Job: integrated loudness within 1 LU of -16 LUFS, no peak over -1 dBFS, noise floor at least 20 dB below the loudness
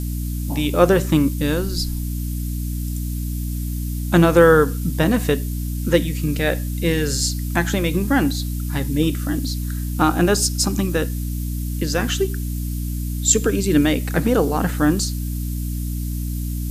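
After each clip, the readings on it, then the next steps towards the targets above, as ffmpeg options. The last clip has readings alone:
hum 60 Hz; highest harmonic 300 Hz; hum level -22 dBFS; noise floor -25 dBFS; noise floor target -41 dBFS; loudness -20.5 LUFS; peak level -1.5 dBFS; loudness target -16.0 LUFS
-> -af "bandreject=f=60:t=h:w=6,bandreject=f=120:t=h:w=6,bandreject=f=180:t=h:w=6,bandreject=f=240:t=h:w=6,bandreject=f=300:t=h:w=6"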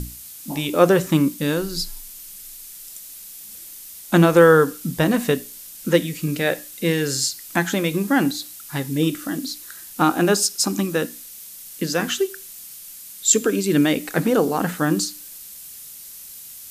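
hum not found; noise floor -40 dBFS; noise floor target -41 dBFS
-> -af "afftdn=nr=6:nf=-40"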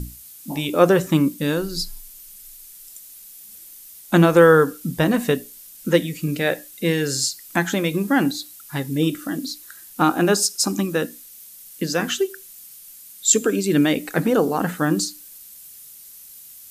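noise floor -43 dBFS; loudness -20.5 LUFS; peak level -2.0 dBFS; loudness target -16.0 LUFS
-> -af "volume=1.68,alimiter=limit=0.891:level=0:latency=1"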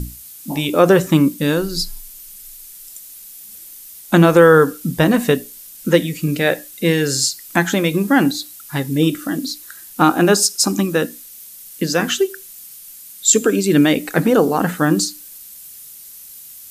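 loudness -16.5 LUFS; peak level -1.0 dBFS; noise floor -39 dBFS

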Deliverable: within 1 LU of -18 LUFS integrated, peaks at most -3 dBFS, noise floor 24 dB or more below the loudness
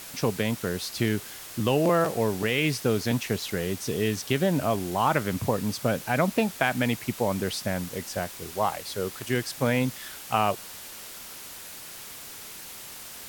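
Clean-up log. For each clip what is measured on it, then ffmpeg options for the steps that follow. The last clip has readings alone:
noise floor -42 dBFS; noise floor target -51 dBFS; loudness -27.0 LUFS; peak level -9.5 dBFS; loudness target -18.0 LUFS
-> -af "afftdn=nr=9:nf=-42"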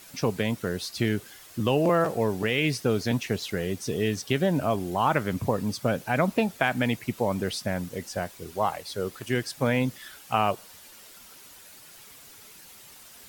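noise floor -49 dBFS; noise floor target -52 dBFS
-> -af "afftdn=nr=6:nf=-49"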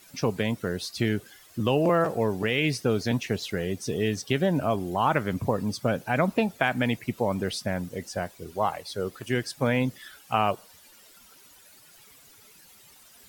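noise floor -54 dBFS; loudness -27.5 LUFS; peak level -9.5 dBFS; loudness target -18.0 LUFS
-> -af "volume=2.99,alimiter=limit=0.708:level=0:latency=1"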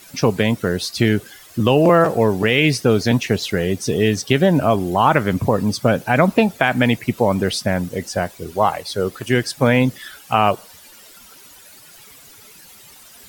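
loudness -18.0 LUFS; peak level -3.0 dBFS; noise floor -45 dBFS

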